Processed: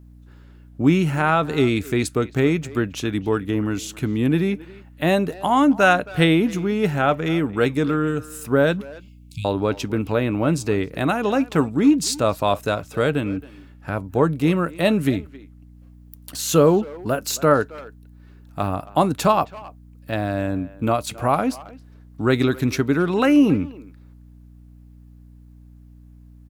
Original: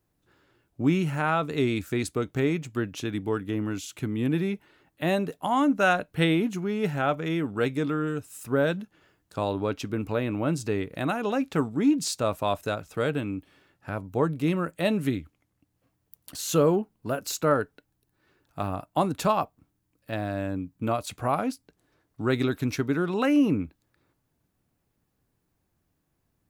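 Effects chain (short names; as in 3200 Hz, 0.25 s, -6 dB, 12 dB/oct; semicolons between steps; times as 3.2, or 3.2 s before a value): 8.81–9.45 brick-wall FIR band-stop 190–2100 Hz; hum 60 Hz, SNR 24 dB; speakerphone echo 0.27 s, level -18 dB; gain +6.5 dB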